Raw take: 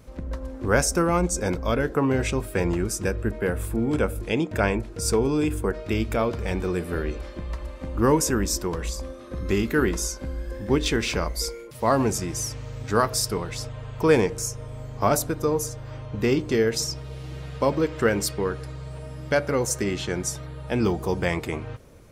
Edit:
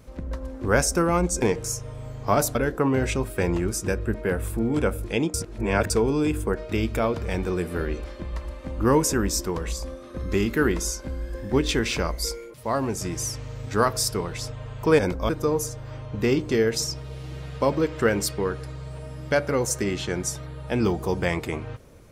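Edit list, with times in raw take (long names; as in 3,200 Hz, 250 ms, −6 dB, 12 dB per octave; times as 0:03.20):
0:01.42–0:01.72: swap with 0:14.16–0:15.29
0:04.51–0:05.07: reverse
0:11.71–0:12.18: clip gain −4.5 dB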